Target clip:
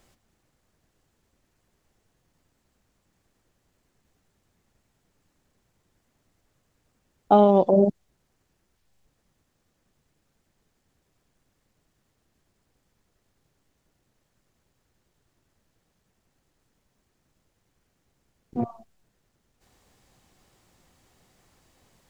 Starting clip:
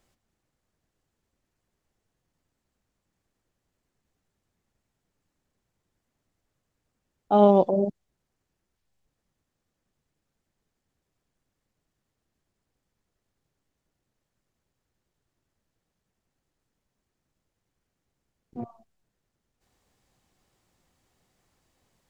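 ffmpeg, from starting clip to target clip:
ffmpeg -i in.wav -af "acompressor=threshold=-21dB:ratio=10,volume=8.5dB" out.wav

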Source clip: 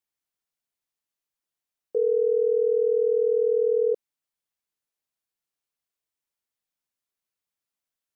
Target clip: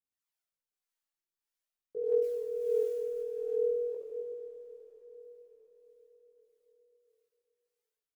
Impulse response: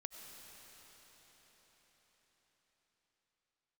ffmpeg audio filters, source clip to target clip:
-filter_complex "[0:a]lowshelf=frequency=330:gain=-5.5,aecho=1:1:70|154|254.8|375.8|520.9:0.631|0.398|0.251|0.158|0.1,asettb=1/sr,asplit=3[link_01][link_02][link_03];[link_01]atrim=end=2.224[link_04];[link_02]atrim=start=2.22:end=3.21,asetpts=PTS-STARTPTS,afade=type=in:duration=0.004:curve=qsin,afade=type=out:start_time=0.986:duration=0.004:curve=qsin,acrusher=bits=7:mix=0:aa=0.5[link_05];[link_03]atrim=start=3.206[link_06];[link_04][link_05]acrossfade=duration=0.004:curve1=hsin:curve2=qsin[link_07];[link_07][link_06]acrossfade=duration=0.004:curve1=qsin:curve2=hsin,aphaser=in_gain=1:out_gain=1:delay=3.6:decay=0.52:speed=0.47:type=triangular,acrossover=split=450[link_08][link_09];[link_08]aeval=exprs='val(0)*(1-0.7/2+0.7/2*cos(2*PI*1.6*n/s))':channel_layout=same[link_10];[link_09]aeval=exprs='val(0)*(1-0.7/2-0.7/2*cos(2*PI*1.6*n/s))':channel_layout=same[link_11];[link_10][link_11]amix=inputs=2:normalize=0,asplit=2[link_12][link_13];[1:a]atrim=start_sample=2205,adelay=19[link_14];[link_13][link_14]afir=irnorm=-1:irlink=0,volume=5dB[link_15];[link_12][link_15]amix=inputs=2:normalize=0,volume=-8.5dB"

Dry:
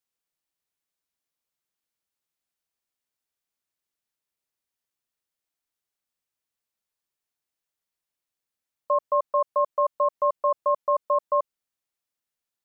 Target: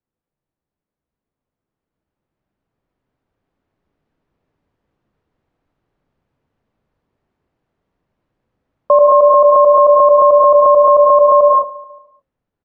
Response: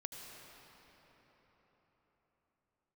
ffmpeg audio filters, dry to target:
-filter_complex "[0:a]equalizer=frequency=840:width=0.38:gain=-5,bandreject=frequency=60:width_type=h:width=6,bandreject=frequency=120:width_type=h:width=6,bandreject=frequency=180:width_type=h:width=6,bandreject=frequency=240:width_type=h:width=6,bandreject=frequency=300:width_type=h:width=6,bandreject=frequency=360:width_type=h:width=6,bandreject=frequency=420:width_type=h:width=6,bandreject=frequency=480:width_type=h:width=6,bandreject=frequency=540:width_type=h:width=6,aecho=1:1:144|288|432|576:0.0708|0.0396|0.0222|0.0124,acrossover=split=510|690[link_01][link_02][link_03];[link_01]acontrast=52[link_04];[link_04][link_02][link_03]amix=inputs=3:normalize=0,lowpass=1100,dynaudnorm=framelen=820:gausssize=7:maxgain=16dB[link_05];[1:a]atrim=start_sample=2205,afade=type=out:start_time=0.28:duration=0.01,atrim=end_sample=12789[link_06];[link_05][link_06]afir=irnorm=-1:irlink=0,alimiter=level_in=16dB:limit=-1dB:release=50:level=0:latency=1,volume=-1dB"

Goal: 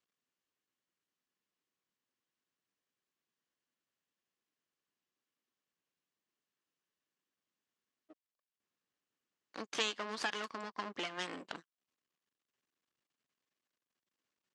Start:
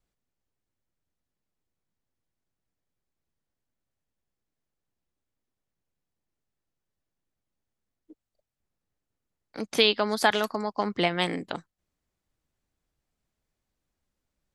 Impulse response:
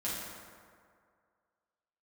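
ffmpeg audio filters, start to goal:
-af "equalizer=frequency=770:width=0.84:gain=-6.5,acompressor=threshold=-34dB:ratio=2,aeval=exprs='max(val(0),0)':channel_layout=same,highpass=280,equalizer=frequency=1100:width_type=q:width=4:gain=7,equalizer=frequency=1700:width_type=q:width=4:gain=4,equalizer=frequency=2900:width_type=q:width=4:gain=5,lowpass=frequency=7600:width=0.5412,lowpass=frequency=7600:width=1.3066"

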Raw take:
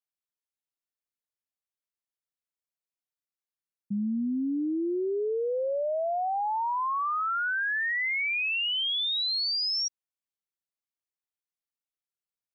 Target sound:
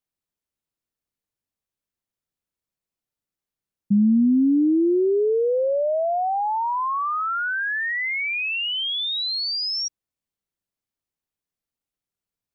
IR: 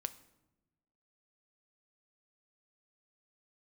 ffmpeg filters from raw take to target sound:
-af "lowshelf=frequency=440:gain=12,volume=2.5dB"

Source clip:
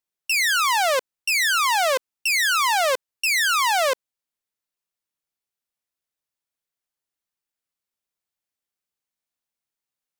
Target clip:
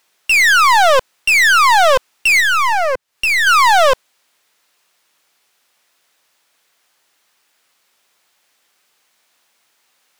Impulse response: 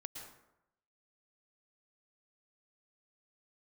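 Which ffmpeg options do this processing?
-filter_complex "[0:a]asettb=1/sr,asplit=3[link_01][link_02][link_03];[link_01]atrim=end=2.404[link_04];[link_02]atrim=start=2.4:end=3.47,asetpts=PTS-STARTPTS,afade=type=in:duration=0.004:curve=qsin,afade=type=out:start_time=1.066:duration=0.004:curve=qsin,acrossover=split=150[link_05][link_06];[link_06]acompressor=threshold=-34dB:ratio=8[link_07];[link_05][link_07]amix=inputs=2:normalize=0[link_08];[link_03]atrim=start=3.466[link_09];[link_04][link_08]acrossfade=duration=0.004:curve1=hsin:curve2=qsin[link_10];[link_10][link_09]acrossfade=duration=0.004:curve1=qsin:curve2=hsin,asplit=2[link_11][link_12];[link_12]highpass=frequency=720:poles=1,volume=29dB,asoftclip=type=tanh:threshold=-15dB[link_13];[link_11][link_13]amix=inputs=2:normalize=0,lowpass=frequency=4100:poles=1,volume=-6dB,volume=8.5dB"

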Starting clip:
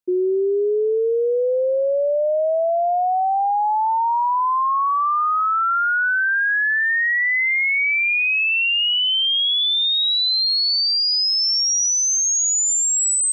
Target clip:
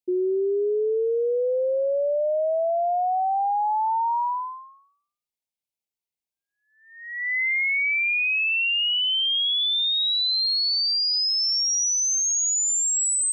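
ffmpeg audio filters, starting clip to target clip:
ffmpeg -i in.wav -af "asuperstop=centerf=1400:order=20:qfactor=1.4,volume=-4dB" out.wav

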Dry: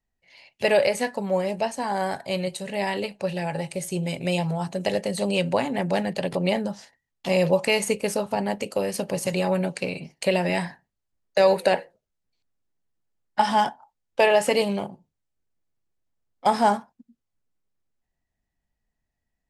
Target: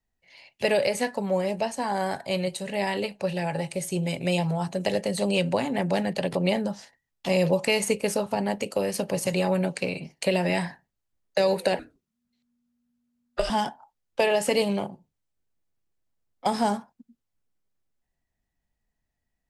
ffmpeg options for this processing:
ffmpeg -i in.wav -filter_complex "[0:a]acrossover=split=430|3000[link_01][link_02][link_03];[link_02]acompressor=threshold=-24dB:ratio=6[link_04];[link_01][link_04][link_03]amix=inputs=3:normalize=0,asettb=1/sr,asplit=3[link_05][link_06][link_07];[link_05]atrim=end=11.794[link_08];[link_06]atrim=start=11.79:end=13.5,asetpts=PTS-STARTPTS,afade=type=in:duration=0.004:curve=qsin,afade=type=out:start_time=1.706:duration=0.004:curve=qsin,afreqshift=-240[link_09];[link_07]atrim=start=13.496[link_10];[link_08][link_09]acrossfade=duration=0.004:curve1=hsin:curve2=qsin[link_11];[link_11][link_10]acrossfade=duration=0.004:curve1=qsin:curve2=hsin" out.wav

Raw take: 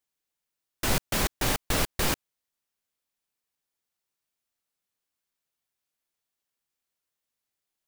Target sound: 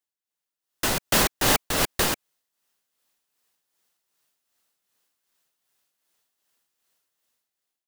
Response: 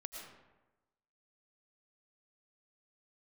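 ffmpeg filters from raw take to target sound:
-filter_complex "[0:a]acrossover=split=670|970[link_01][link_02][link_03];[link_03]bandreject=frequency=2300:width=16[link_04];[link_01][link_02][link_04]amix=inputs=3:normalize=0,tremolo=f=2.6:d=0.55,dynaudnorm=framelen=210:gausssize=7:maxgain=16dB,lowshelf=frequency=140:gain=-9.5,volume=-3dB"

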